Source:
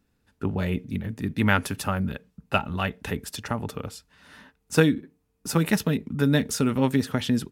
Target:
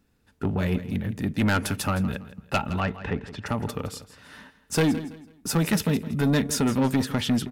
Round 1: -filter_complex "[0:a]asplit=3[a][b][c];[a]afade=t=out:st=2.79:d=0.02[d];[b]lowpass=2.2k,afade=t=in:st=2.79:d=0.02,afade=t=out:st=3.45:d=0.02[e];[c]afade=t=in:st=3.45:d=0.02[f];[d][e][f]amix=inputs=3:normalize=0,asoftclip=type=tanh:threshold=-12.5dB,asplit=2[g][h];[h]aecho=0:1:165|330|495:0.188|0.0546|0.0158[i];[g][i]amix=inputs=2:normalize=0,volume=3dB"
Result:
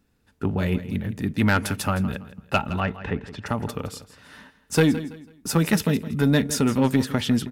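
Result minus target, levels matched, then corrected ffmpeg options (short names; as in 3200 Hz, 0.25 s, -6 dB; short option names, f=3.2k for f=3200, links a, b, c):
soft clip: distortion -7 dB
-filter_complex "[0:a]asplit=3[a][b][c];[a]afade=t=out:st=2.79:d=0.02[d];[b]lowpass=2.2k,afade=t=in:st=2.79:d=0.02,afade=t=out:st=3.45:d=0.02[e];[c]afade=t=in:st=3.45:d=0.02[f];[d][e][f]amix=inputs=3:normalize=0,asoftclip=type=tanh:threshold=-19.5dB,asplit=2[g][h];[h]aecho=0:1:165|330|495:0.188|0.0546|0.0158[i];[g][i]amix=inputs=2:normalize=0,volume=3dB"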